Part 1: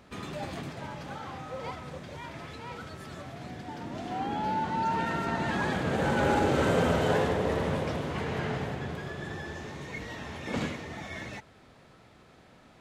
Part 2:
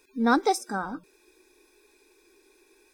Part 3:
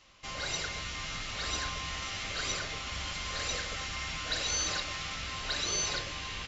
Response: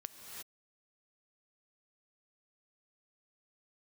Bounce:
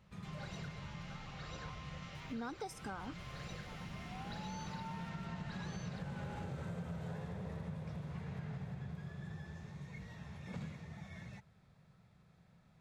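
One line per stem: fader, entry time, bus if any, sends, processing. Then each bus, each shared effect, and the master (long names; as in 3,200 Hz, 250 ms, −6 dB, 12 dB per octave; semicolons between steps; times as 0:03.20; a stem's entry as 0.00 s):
−15.5 dB, 0.00 s, no send, low shelf with overshoot 220 Hz +7.5 dB, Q 3; notch filter 3,000 Hz
−5.5 dB, 2.15 s, no send, downward compressor 1.5 to 1, threshold −36 dBFS, peak gain reduction 7.5 dB
−10.5 dB, 0.00 s, no send, low-pass filter 1,600 Hz 6 dB per octave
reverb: not used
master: downward compressor 6 to 1, threshold −40 dBFS, peak gain reduction 11 dB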